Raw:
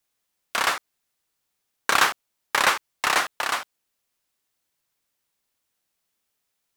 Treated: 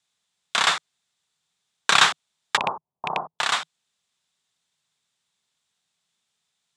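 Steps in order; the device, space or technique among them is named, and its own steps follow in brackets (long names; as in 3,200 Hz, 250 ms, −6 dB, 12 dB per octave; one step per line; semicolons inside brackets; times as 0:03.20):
0:02.57–0:03.39: Butterworth low-pass 1,000 Hz 48 dB per octave
car door speaker with a rattle (loose part that buzzes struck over −36 dBFS, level −13 dBFS; loudspeaker in its box 92–8,900 Hz, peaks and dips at 160 Hz +7 dB, 310 Hz −10 dB, 530 Hz −6 dB, 3,600 Hz +9 dB, 7,500 Hz +4 dB)
level +1.5 dB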